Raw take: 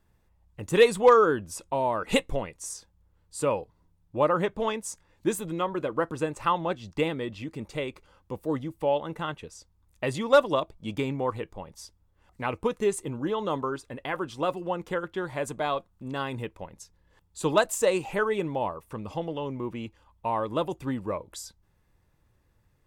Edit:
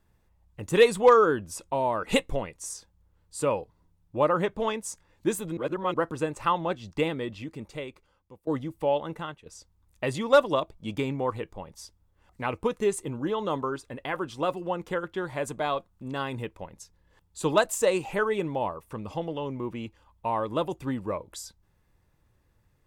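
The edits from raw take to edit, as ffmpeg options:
-filter_complex "[0:a]asplit=5[a][b][c][d][e];[a]atrim=end=5.572[f];[b]atrim=start=5.568:end=5.942,asetpts=PTS-STARTPTS,areverse[g];[c]atrim=start=5.938:end=8.47,asetpts=PTS-STARTPTS,afade=t=out:st=1.322:d=1.21:silence=0.0841395[h];[d]atrim=start=8.47:end=9.46,asetpts=PTS-STARTPTS,afade=t=in:d=0.004:c=hsin:silence=0.0841395,afade=t=out:st=0.63:d=0.36:silence=0.177828[i];[e]atrim=start=9.46,asetpts=PTS-STARTPTS,afade=t=in:d=0.004:c=hsin:silence=0.177828[j];[f][g]acrossfade=d=0.004:c1=hsin:c2=hsin[k];[h][i][j]concat=n=3:v=0:a=1[l];[k][l]acrossfade=d=0.004:c1=hsin:c2=hsin"

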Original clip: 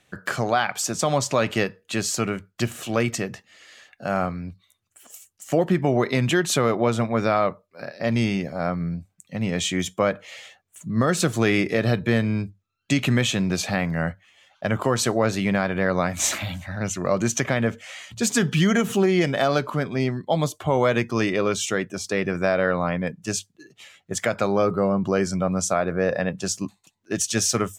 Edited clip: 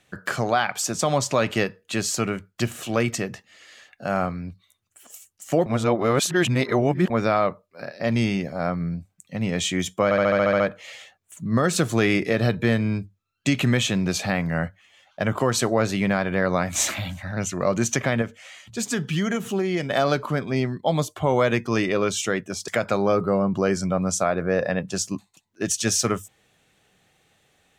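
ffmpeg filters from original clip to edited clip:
-filter_complex "[0:a]asplit=14[a][b][c][d][e][f][g][h][i][j][k][l][m][n];[a]atrim=end=5.662[o];[b]atrim=start=5.658:end=7.102,asetpts=PTS-STARTPTS,areverse[p];[c]atrim=start=7.098:end=10.112[q];[d]atrim=start=10.038:end=10.112[r];[e]atrim=start=10.038:end=10.112[s];[f]atrim=start=10.038:end=10.112[t];[g]atrim=start=10.038:end=10.112[u];[h]atrim=start=10.038:end=10.112[v];[i]atrim=start=10.038:end=10.112[w];[j]atrim=start=10.038:end=10.112[x];[k]atrim=start=10.038:end=17.662[y];[l]atrim=start=17.658:end=19.342,asetpts=PTS-STARTPTS,volume=-5dB[z];[m]atrim=start=19.338:end=22.122[aa];[n]atrim=start=24.178[ab];[o][p]acrossfade=d=0.004:c1=hsin:c2=hsin[ac];[ac][q]acrossfade=d=0.004:c1=hsin:c2=hsin[ad];[ad][r]acrossfade=d=0.004:c1=hsin:c2=hsin[ae];[ae][s]acrossfade=d=0.004:c1=hsin:c2=hsin[af];[af][t]acrossfade=d=0.004:c1=hsin:c2=hsin[ag];[ag][u]acrossfade=d=0.004:c1=hsin:c2=hsin[ah];[ah][v]acrossfade=d=0.004:c1=hsin:c2=hsin[ai];[ai][w]acrossfade=d=0.004:c1=hsin:c2=hsin[aj];[aj][x]acrossfade=d=0.004:c1=hsin:c2=hsin[ak];[ak][y]acrossfade=d=0.004:c1=hsin:c2=hsin[al];[al][z]acrossfade=d=0.004:c1=hsin:c2=hsin[am];[am][aa]acrossfade=d=0.004:c1=hsin:c2=hsin[an];[an][ab]acrossfade=d=0.004:c1=hsin:c2=hsin"

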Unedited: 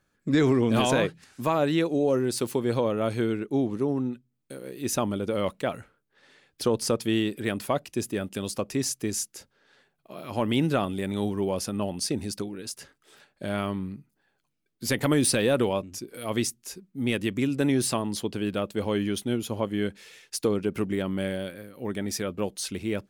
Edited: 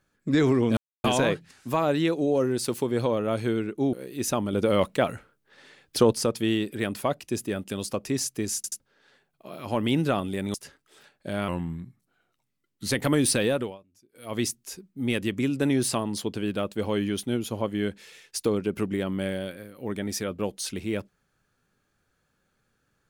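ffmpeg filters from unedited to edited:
-filter_complex "[0:a]asplit=13[a][b][c][d][e][f][g][h][i][j][k][l][m];[a]atrim=end=0.77,asetpts=PTS-STARTPTS,afade=t=out:st=0.766:d=0.004:c=hsin,apad=pad_dur=0.27[n];[b]atrim=start=0.77:end=3.662,asetpts=PTS-STARTPTS,afade=t=in:d=0.004:c=hsin[o];[c]atrim=start=4.578:end=5.182[p];[d]atrim=start=5.178:end=6.782,asetpts=PTS-STARTPTS,volume=5dB[q];[e]atrim=start=6.778:end=9.292[r];[f]atrim=start=9.208:end=9.292[s];[g]atrim=start=9.208:end=9.292[t];[h]atrim=start=9.448:end=11.192[u];[i]atrim=start=12.698:end=13.644[v];[j]atrim=start=13.64:end=14.9,asetpts=PTS-STARTPTS,asetrate=38808,aresample=44100,atrim=end_sample=63143,asetpts=PTS-STARTPTS[w];[k]atrim=start=14.896:end=15.77,asetpts=PTS-STARTPTS,afade=t=out:st=0.534:d=0.34:silence=0.0630957[x];[l]atrim=start=15.77:end=16.09,asetpts=PTS-STARTPTS,volume=-24dB[y];[m]atrim=start=16.09,asetpts=PTS-STARTPTS,afade=t=in:d=0.34:silence=0.0630957[z];[n][o]concat=n=2:v=0:a=1[aa];[aa][p]acrossfade=d=0.004:c1=hsin:c2=hsin[ab];[ab][q]acrossfade=d=0.004:c1=hsin:c2=hsin[ac];[ac][r]acrossfade=d=0.004:c1=hsin:c2=hsin[ad];[ad][s]acrossfade=d=0.004:c1=hsin:c2=hsin[ae];[ae][t]acrossfade=d=0.004:c1=hsin:c2=hsin[af];[af][u]acrossfade=d=0.004:c1=hsin:c2=hsin[ag];[ag][v]acrossfade=d=0.004:c1=hsin:c2=hsin[ah];[ah][w]acrossfade=d=0.004:c1=hsin:c2=hsin[ai];[x][y][z]concat=n=3:v=0:a=1[aj];[ai][aj]acrossfade=d=0.004:c1=hsin:c2=hsin"

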